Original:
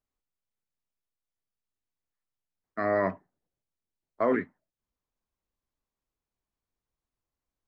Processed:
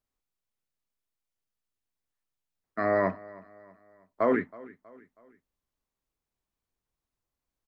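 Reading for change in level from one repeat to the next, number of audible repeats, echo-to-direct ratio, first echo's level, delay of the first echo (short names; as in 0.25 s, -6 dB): -7.0 dB, 3, -20.0 dB, -21.0 dB, 0.321 s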